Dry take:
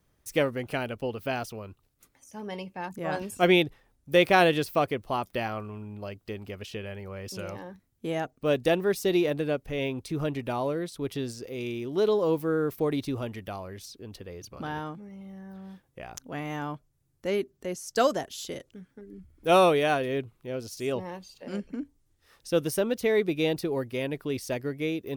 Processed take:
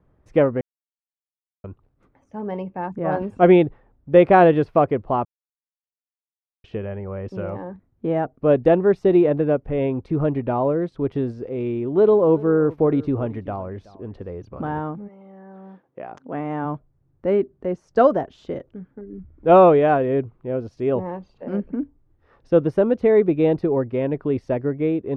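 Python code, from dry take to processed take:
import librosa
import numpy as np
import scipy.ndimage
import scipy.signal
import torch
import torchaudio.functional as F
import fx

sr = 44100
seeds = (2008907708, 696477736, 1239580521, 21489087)

y = fx.echo_single(x, sr, ms=376, db=-20.0, at=(11.6, 14.33))
y = fx.highpass(y, sr, hz=fx.line((15.07, 450.0), (16.64, 150.0)), slope=12, at=(15.07, 16.64), fade=0.02)
y = fx.edit(y, sr, fx.silence(start_s=0.61, length_s=1.03),
    fx.silence(start_s=5.25, length_s=1.39), tone=tone)
y = scipy.signal.sosfilt(scipy.signal.butter(2, 1100.0, 'lowpass', fs=sr, output='sos'), y)
y = y * librosa.db_to_amplitude(9.0)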